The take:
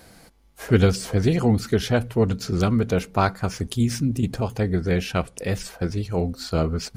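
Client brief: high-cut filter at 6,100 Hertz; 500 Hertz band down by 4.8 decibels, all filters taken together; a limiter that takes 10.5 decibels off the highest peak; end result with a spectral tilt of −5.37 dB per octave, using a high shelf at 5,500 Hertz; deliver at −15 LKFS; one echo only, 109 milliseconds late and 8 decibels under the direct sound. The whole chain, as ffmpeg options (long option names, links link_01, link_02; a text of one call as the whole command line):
ffmpeg -i in.wav -af "lowpass=6100,equalizer=frequency=500:width_type=o:gain=-6,highshelf=frequency=5500:gain=8.5,alimiter=limit=-17.5dB:level=0:latency=1,aecho=1:1:109:0.398,volume=12dB" out.wav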